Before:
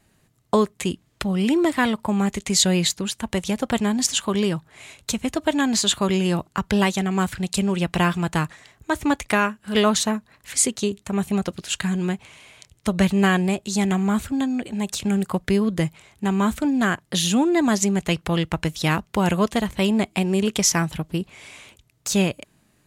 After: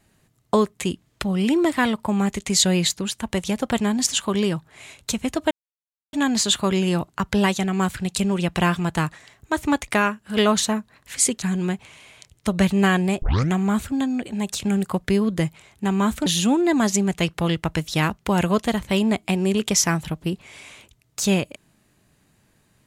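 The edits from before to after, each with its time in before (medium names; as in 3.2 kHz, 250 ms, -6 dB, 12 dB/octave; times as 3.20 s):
5.51 s: insert silence 0.62 s
10.80–11.82 s: delete
13.62 s: tape start 0.30 s
16.66–17.14 s: delete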